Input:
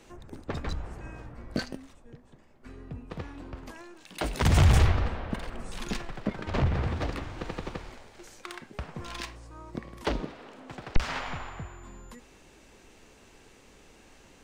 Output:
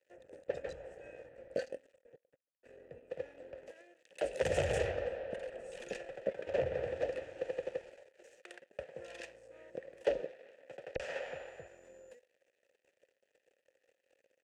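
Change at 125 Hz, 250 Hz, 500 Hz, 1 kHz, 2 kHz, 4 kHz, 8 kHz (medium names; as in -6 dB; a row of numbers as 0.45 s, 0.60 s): -20.5 dB, -16.0 dB, +2.5 dB, -12.0 dB, -8.0 dB, -12.5 dB, -11.0 dB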